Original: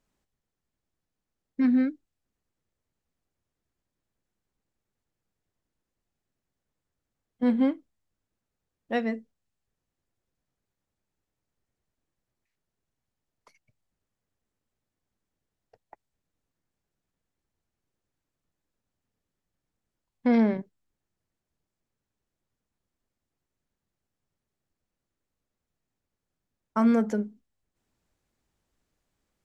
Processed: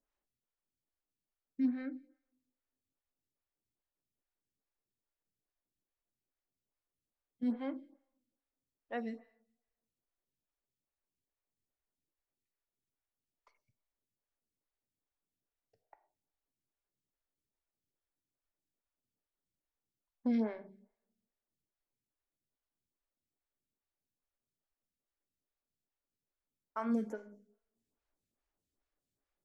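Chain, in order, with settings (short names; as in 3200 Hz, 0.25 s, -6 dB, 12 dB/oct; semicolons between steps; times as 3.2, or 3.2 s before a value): two-slope reverb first 0.59 s, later 1.5 s, from -28 dB, DRR 9 dB; photocell phaser 2.4 Hz; gain -9 dB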